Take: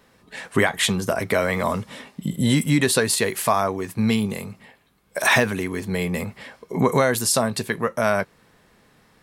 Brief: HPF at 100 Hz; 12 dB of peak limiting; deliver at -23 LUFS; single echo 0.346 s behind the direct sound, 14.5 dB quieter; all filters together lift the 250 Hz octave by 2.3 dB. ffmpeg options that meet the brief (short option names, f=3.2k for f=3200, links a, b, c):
-af "highpass=100,equalizer=f=250:t=o:g=3,alimiter=limit=-14.5dB:level=0:latency=1,aecho=1:1:346:0.188,volume=2.5dB"